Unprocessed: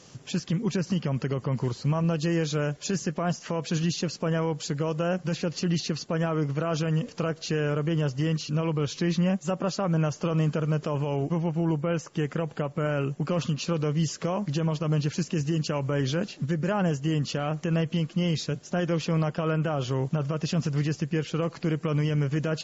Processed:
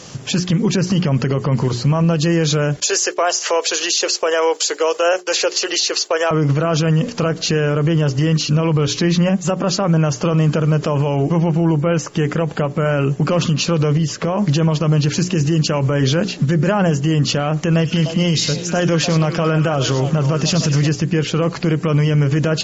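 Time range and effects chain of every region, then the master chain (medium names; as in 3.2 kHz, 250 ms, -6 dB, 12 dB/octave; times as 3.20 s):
2.80–6.31 s: steep high-pass 390 Hz + treble shelf 4.2 kHz +11 dB + expander -40 dBFS
13.97–14.38 s: treble shelf 4.7 kHz -10 dB + compression 3:1, threshold -30 dBFS
17.71–20.89 s: treble shelf 5.9 kHz +8.5 dB + repeats whose band climbs or falls 100 ms, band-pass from 5.1 kHz, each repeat -1.4 oct, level -3 dB + tape noise reduction on one side only decoder only
whole clip: hum notches 60/120/180/240/300/360/420 Hz; loudness maximiser +22 dB; trim -7 dB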